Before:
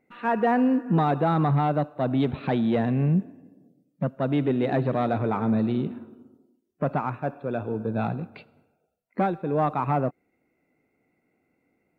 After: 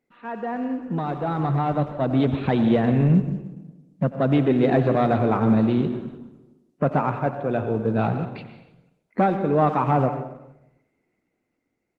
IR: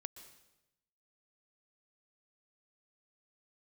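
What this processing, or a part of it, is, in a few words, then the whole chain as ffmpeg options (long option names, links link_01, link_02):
speakerphone in a meeting room: -filter_complex "[0:a]asplit=3[link_01][link_02][link_03];[link_01]afade=type=out:start_time=4.17:duration=0.02[link_04];[link_02]bandreject=frequency=910:width=15,afade=type=in:start_time=4.17:duration=0.02,afade=type=out:start_time=5.37:duration=0.02[link_05];[link_03]afade=type=in:start_time=5.37:duration=0.02[link_06];[link_04][link_05][link_06]amix=inputs=3:normalize=0[link_07];[1:a]atrim=start_sample=2205[link_08];[link_07][link_08]afir=irnorm=-1:irlink=0,asplit=2[link_09][link_10];[link_10]adelay=90,highpass=300,lowpass=3400,asoftclip=type=hard:threshold=-24.5dB,volume=-14dB[link_11];[link_09][link_11]amix=inputs=2:normalize=0,dynaudnorm=framelen=260:gausssize=13:maxgain=12.5dB,volume=-3dB" -ar 48000 -c:a libopus -b:a 16k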